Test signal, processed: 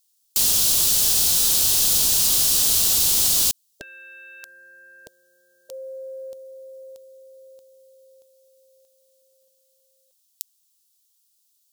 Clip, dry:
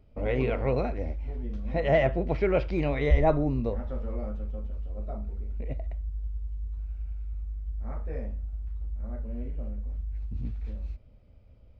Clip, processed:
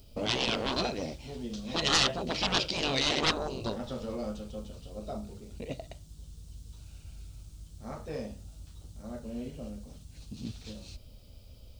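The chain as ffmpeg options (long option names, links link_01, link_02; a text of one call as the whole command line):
ffmpeg -i in.wav -af "aeval=exprs='0.316*sin(PI/2*3.55*val(0)/0.316)':channel_layout=same,aexciter=amount=12.4:drive=2.7:freq=3100,afftfilt=real='re*lt(hypot(re,im),0.891)':imag='im*lt(hypot(re,im),0.891)':win_size=1024:overlap=0.75,volume=-11.5dB" out.wav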